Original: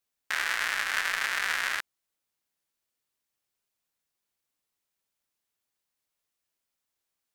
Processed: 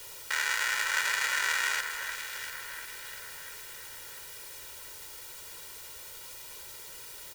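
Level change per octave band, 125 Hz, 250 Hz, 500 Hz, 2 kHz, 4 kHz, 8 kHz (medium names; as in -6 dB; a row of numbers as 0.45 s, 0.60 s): no reading, -2.0 dB, +1.0 dB, 0.0 dB, +1.5 dB, +6.0 dB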